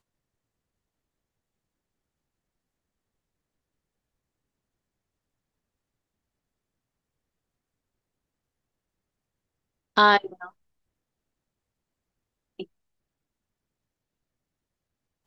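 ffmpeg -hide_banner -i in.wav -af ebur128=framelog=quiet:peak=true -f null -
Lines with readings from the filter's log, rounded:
Integrated loudness:
  I:         -20.4 LUFS
  Threshold: -34.1 LUFS
Loudness range:
  LRA:         9.3 LU
  Threshold: -49.9 LUFS
  LRA low:   -36.7 LUFS
  LRA high:  -27.4 LUFS
True peak:
  Peak:       -5.1 dBFS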